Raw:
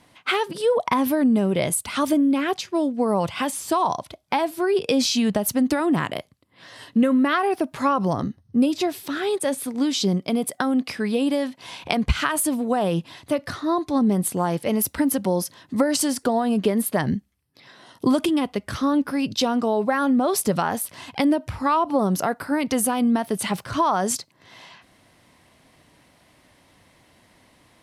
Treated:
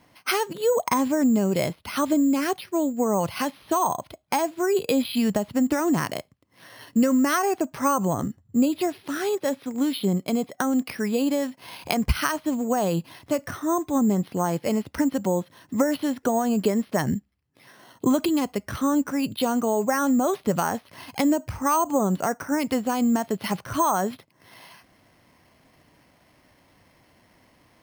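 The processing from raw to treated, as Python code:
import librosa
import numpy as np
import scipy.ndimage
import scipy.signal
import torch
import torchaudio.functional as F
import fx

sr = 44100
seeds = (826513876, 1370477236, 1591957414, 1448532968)

y = np.repeat(scipy.signal.resample_poly(x, 1, 6), 6)[:len(x)]
y = y * librosa.db_to_amplitude(-1.5)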